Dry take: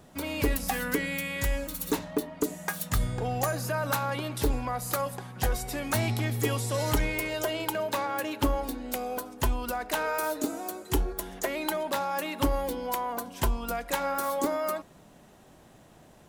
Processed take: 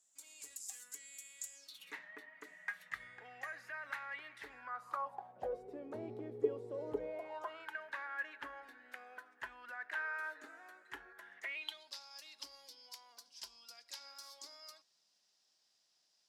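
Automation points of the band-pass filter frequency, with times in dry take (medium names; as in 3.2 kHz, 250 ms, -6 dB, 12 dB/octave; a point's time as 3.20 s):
band-pass filter, Q 6.5
1.54 s 7.3 kHz
1.95 s 1.9 kHz
4.50 s 1.9 kHz
5.69 s 420 Hz
6.92 s 420 Hz
7.71 s 1.7 kHz
11.34 s 1.7 kHz
11.91 s 5 kHz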